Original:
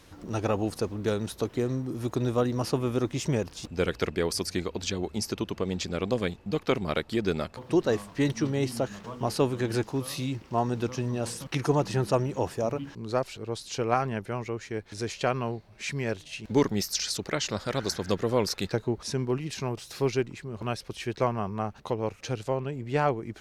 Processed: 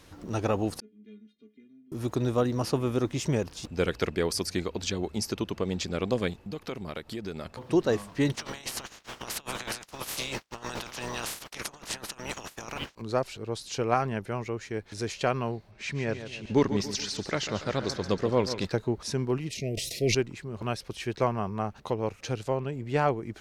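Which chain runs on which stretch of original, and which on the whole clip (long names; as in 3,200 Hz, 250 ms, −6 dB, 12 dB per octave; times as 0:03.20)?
0:00.80–0:01.92: formant filter i + high-shelf EQ 5,300 Hz −8.5 dB + stiff-string resonator 210 Hz, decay 0.23 s, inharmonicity 0.008
0:06.33–0:07.46: high-shelf EQ 11,000 Hz +6.5 dB + downward compressor 2.5 to 1, threshold −36 dBFS
0:08.34–0:13.00: ceiling on every frequency bin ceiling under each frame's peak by 28 dB + compressor whose output falls as the input rises −33 dBFS + downward expander −29 dBFS
0:15.71–0:18.65: running median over 3 samples + high-frequency loss of the air 62 metres + repeating echo 142 ms, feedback 47%, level −11 dB
0:19.49–0:20.15: Chebyshev band-stop filter 690–1,900 Hz, order 5 + downward expander −44 dBFS + level that may fall only so fast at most 30 dB per second
whole clip: no processing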